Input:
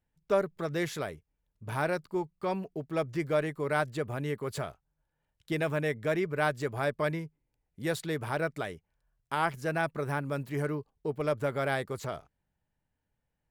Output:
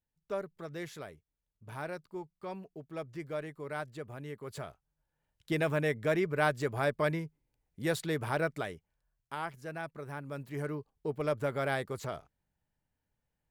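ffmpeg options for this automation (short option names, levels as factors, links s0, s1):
-af "volume=2.51,afade=t=in:st=4.36:d=1.15:silence=0.334965,afade=t=out:st=8.39:d=1.1:silence=0.316228,afade=t=in:st=10.11:d=0.97:silence=0.398107"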